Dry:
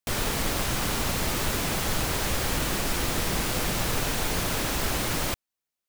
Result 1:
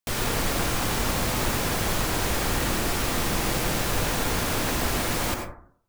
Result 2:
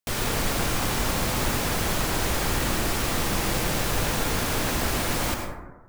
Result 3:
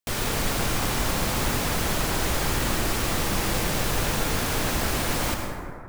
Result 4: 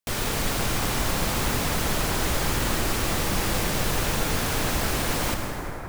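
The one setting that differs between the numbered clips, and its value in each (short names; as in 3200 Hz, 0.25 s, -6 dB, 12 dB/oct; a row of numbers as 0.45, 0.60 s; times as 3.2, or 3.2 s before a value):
plate-style reverb, RT60: 0.57, 1.2, 2.5, 5.3 s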